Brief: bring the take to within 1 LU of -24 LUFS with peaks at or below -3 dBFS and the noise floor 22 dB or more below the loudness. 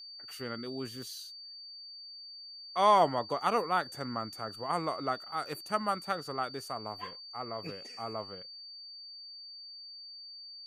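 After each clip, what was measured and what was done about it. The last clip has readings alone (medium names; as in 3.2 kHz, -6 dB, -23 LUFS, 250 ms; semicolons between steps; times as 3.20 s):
steady tone 4.6 kHz; tone level -45 dBFS; loudness -33.5 LUFS; peak level -12.5 dBFS; loudness target -24.0 LUFS
-> band-stop 4.6 kHz, Q 30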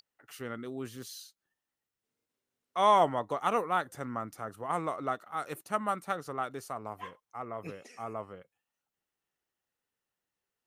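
steady tone not found; loudness -33.0 LUFS; peak level -13.0 dBFS; loudness target -24.0 LUFS
-> trim +9 dB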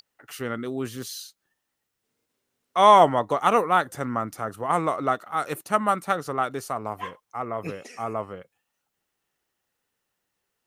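loudness -24.0 LUFS; peak level -4.0 dBFS; noise floor -80 dBFS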